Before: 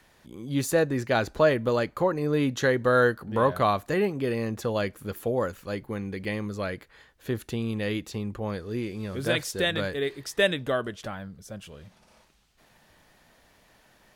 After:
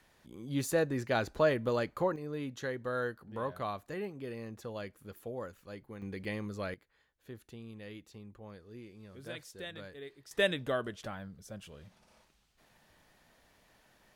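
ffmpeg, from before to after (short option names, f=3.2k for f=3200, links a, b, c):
-af "asetnsamples=n=441:p=0,asendcmd='2.16 volume volume -14dB;6.02 volume volume -7dB;6.74 volume volume -18dB;10.31 volume volume -6dB',volume=-6.5dB"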